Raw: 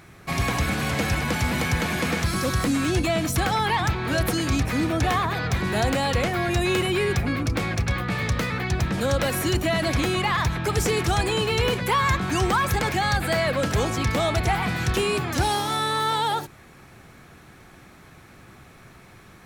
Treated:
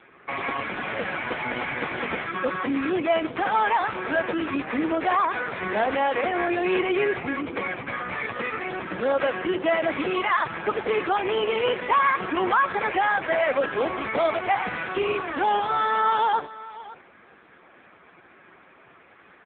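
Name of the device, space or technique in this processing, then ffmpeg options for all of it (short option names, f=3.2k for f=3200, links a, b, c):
satellite phone: -filter_complex "[0:a]asettb=1/sr,asplit=3[a][b][c];[a]atrim=end=5.344[d];[b]atrim=start=5.34:end=6.92,asetpts=PTS-STARTPTS,afade=t=in:d=0.004:c=qsin,afade=t=out:st=1.576:d=0.004:c=qsin,lowpass=f=6.6k:w=0.5412,lowpass=f=6.6k:w=1.3066[e];[c]atrim=start=6.916[f];[d][e]acrossfade=d=0.004:c1=hsin:c2=qsin[g];[g][f]acrossfade=d=0.004:c1=qsin:c2=hsin,highpass=330,lowpass=3.1k,aecho=1:1:553:0.133,volume=4dB" -ar 8000 -c:a libopencore_amrnb -b:a 5150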